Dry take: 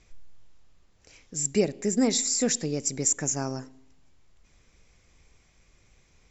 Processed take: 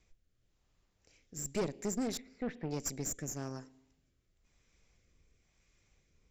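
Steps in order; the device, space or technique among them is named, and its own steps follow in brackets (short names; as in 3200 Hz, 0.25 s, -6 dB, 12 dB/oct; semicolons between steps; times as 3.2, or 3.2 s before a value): 2.17–2.71 LPF 2400 Hz 24 dB/oct; overdriven rotary cabinet (tube stage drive 25 dB, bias 0.8; rotary speaker horn 1 Hz); gain -3 dB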